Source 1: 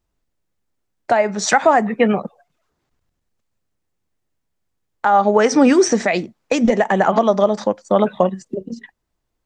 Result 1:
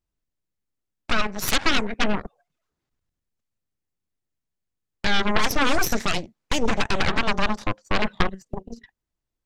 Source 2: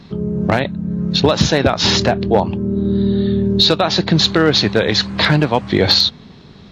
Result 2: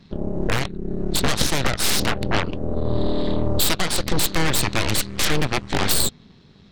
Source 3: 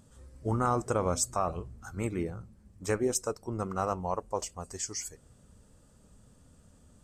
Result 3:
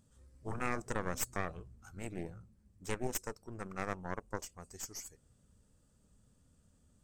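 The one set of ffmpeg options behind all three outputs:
-af "aeval=exprs='0.891*(cos(1*acos(clip(val(0)/0.891,-1,1)))-cos(1*PI/2))+0.447*(cos(3*acos(clip(val(0)/0.891,-1,1)))-cos(3*PI/2))+0.178*(cos(8*acos(clip(val(0)/0.891,-1,1)))-cos(8*PI/2))':c=same,equalizer=f=750:t=o:w=2.1:g=-4,volume=-3dB"

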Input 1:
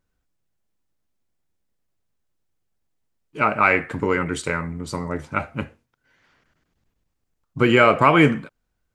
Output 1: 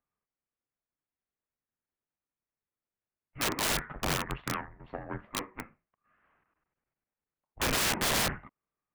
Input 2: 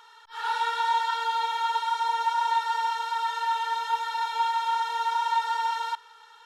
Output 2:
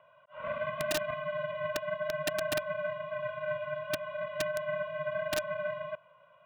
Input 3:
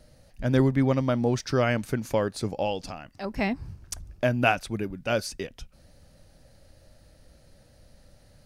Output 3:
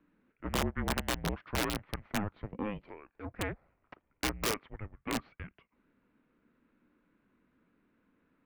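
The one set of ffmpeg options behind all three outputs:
-af "aeval=exprs='0.891*(cos(1*acos(clip(val(0)/0.891,-1,1)))-cos(1*PI/2))+0.112*(cos(4*acos(clip(val(0)/0.891,-1,1)))-cos(4*PI/2))+0.158*(cos(8*acos(clip(val(0)/0.891,-1,1)))-cos(8*PI/2))':c=same,highpass=f=350:t=q:w=0.5412,highpass=f=350:t=q:w=1.307,lowpass=f=2.8k:t=q:w=0.5176,lowpass=f=2.8k:t=q:w=0.7071,lowpass=f=2.8k:t=q:w=1.932,afreqshift=-310,aeval=exprs='(mod(5.62*val(0)+1,2)-1)/5.62':c=same,volume=-8dB"

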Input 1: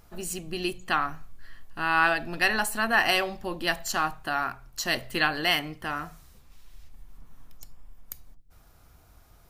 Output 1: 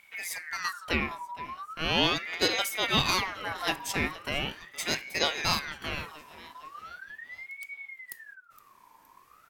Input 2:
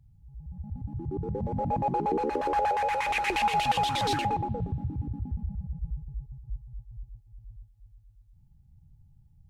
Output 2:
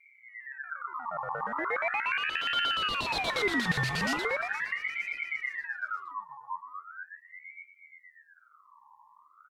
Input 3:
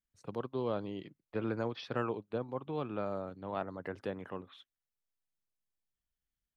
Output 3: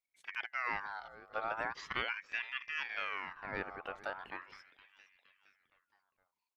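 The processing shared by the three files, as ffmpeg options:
-filter_complex "[0:a]asplit=2[a][b];[b]aecho=0:1:466|932|1398|1864:0.126|0.0655|0.034|0.0177[c];[a][c]amix=inputs=2:normalize=0,aeval=exprs='val(0)*sin(2*PI*1600*n/s+1600*0.4/0.39*sin(2*PI*0.39*n/s))':c=same"

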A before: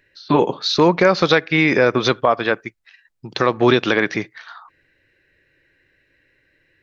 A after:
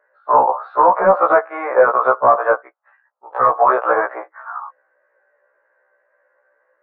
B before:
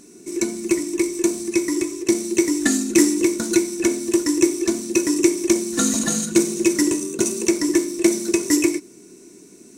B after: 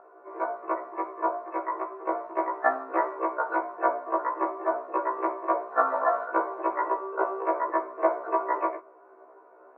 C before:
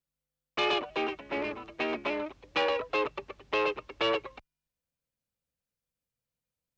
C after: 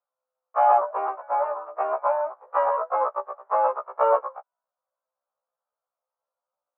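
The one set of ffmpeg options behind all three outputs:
-af "asuperpass=centerf=860:order=8:qfactor=1.1,apsyclip=19dB,afftfilt=real='re*1.73*eq(mod(b,3),0)':imag='im*1.73*eq(mod(b,3),0)':win_size=2048:overlap=0.75,volume=-3dB"

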